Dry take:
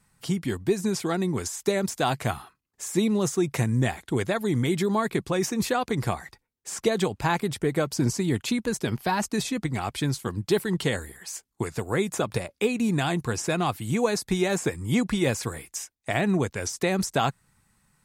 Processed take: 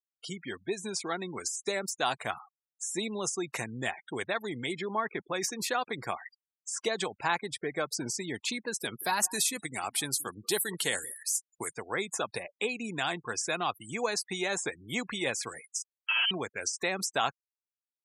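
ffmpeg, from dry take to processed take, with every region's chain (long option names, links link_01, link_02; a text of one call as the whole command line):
ffmpeg -i in.wav -filter_complex "[0:a]asettb=1/sr,asplit=3[link_01][link_02][link_03];[link_01]atrim=end=4.734[link_04];[link_02]atrim=start=4.73:end=5.34,asetpts=PTS-STARTPTS,afade=type=in:duration=0.004:curve=qsin,afade=type=out:start_time=0.606:duration=0.004:curve=qsin,highpass=46,acrusher=bits=6:mix=0:aa=0.5,aemphasis=mode=reproduction:type=50kf[link_05];[link_03]atrim=start=5.336[link_06];[link_04][link_05]acrossfade=duration=0.004:curve1=hsin:curve2=qsin[link_07];[link_07][link_06]acrossfade=duration=0.004:curve1=qsin:curve2=hsin,asettb=1/sr,asplit=3[link_08][link_09][link_10];[link_08]atrim=end=8.794[link_11];[link_09]atrim=start=8.79:end=11.74,asetpts=PTS-STARTPTS,afade=type=in:duration=0.004:curve=qsin,afade=type=out:start_time=2.946:duration=0.004:curve=qsin,equalizer=frequency=11000:width=0.81:gain=12,aecho=1:1:179:0.1,atrim=end_sample=130095[link_12];[link_10]atrim=start=11.736[link_13];[link_11][link_12]acrossfade=duration=0.004:curve1=hsin:curve2=qsin[link_14];[link_14][link_13]acrossfade=duration=0.004:curve1=qsin:curve2=hsin,asettb=1/sr,asplit=3[link_15][link_16][link_17];[link_15]atrim=end=15.824[link_18];[link_16]atrim=start=15.82:end=16.31,asetpts=PTS-STARTPTS,afade=type=in:duration=0.004:curve=qsin,afade=type=out:start_time=0.486:duration=0.004:curve=qsin,aecho=1:1:3:0.76,atrim=end_sample=21609,asoftclip=type=hard:threshold=-23.5dB,lowpass=frequency=2800:width_type=q:width=0.5098,lowpass=frequency=2800:width_type=q:width=0.6013,lowpass=frequency=2800:width_type=q:width=0.9,lowpass=frequency=2800:width_type=q:width=2.563,afreqshift=-3300[link_19];[link_17]atrim=start=16.306[link_20];[link_18][link_19]acrossfade=duration=0.004:curve1=hsin:curve2=qsin[link_21];[link_21][link_20]acrossfade=duration=0.004:curve1=qsin:curve2=hsin,afftdn=noise_reduction=22:noise_floor=-41,highpass=frequency=1100:poles=1,afftfilt=real='re*gte(hypot(re,im),0.00562)':imag='im*gte(hypot(re,im),0.00562)':win_size=1024:overlap=0.75" out.wav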